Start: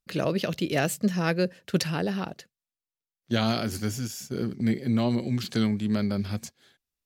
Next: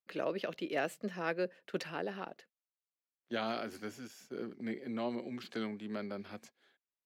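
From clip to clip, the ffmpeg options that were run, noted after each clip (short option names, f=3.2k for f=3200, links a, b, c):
-filter_complex "[0:a]acrossover=split=260 3100:gain=0.0708 1 0.224[a][b][c];[a][b][c]amix=inputs=3:normalize=0,volume=-7dB"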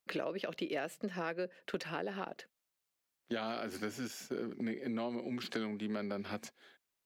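-af "acompressor=threshold=-44dB:ratio=6,volume=9dB"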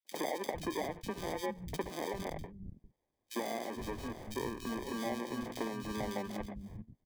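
-filter_complex "[0:a]acrusher=samples=32:mix=1:aa=0.000001,acrossover=split=200|2600[a][b][c];[b]adelay=50[d];[a]adelay=450[e];[e][d][c]amix=inputs=3:normalize=0,adynamicequalizer=threshold=0.001:dfrequency=6100:dqfactor=0.7:tfrequency=6100:tqfactor=0.7:attack=5:release=100:ratio=0.375:range=2.5:mode=cutabove:tftype=highshelf,volume=2dB"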